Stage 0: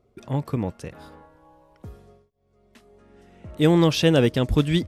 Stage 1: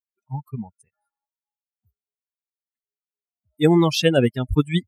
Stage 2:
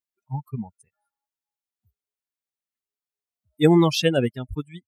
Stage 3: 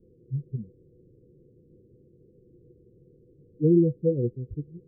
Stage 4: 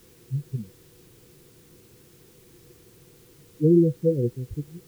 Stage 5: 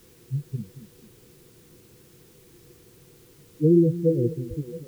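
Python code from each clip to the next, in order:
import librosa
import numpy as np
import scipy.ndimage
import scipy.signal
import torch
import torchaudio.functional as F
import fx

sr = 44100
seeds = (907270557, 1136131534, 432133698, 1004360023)

y1 = fx.bin_expand(x, sr, power=3.0)
y1 = fx.low_shelf(y1, sr, hz=75.0, db=-7.5)
y1 = F.gain(torch.from_numpy(y1), 6.0).numpy()
y2 = fx.fade_out_tail(y1, sr, length_s=1.08)
y3 = fx.quant_dither(y2, sr, seeds[0], bits=6, dither='triangular')
y3 = scipy.signal.sosfilt(scipy.signal.cheby1(6, 9, 510.0, 'lowpass', fs=sr, output='sos'), y3)
y4 = fx.quant_dither(y3, sr, seeds[1], bits=10, dither='triangular')
y4 = F.gain(torch.from_numpy(y4), 2.0).numpy()
y5 = fx.echo_stepped(y4, sr, ms=222, hz=200.0, octaves=0.7, feedback_pct=70, wet_db=-10.0)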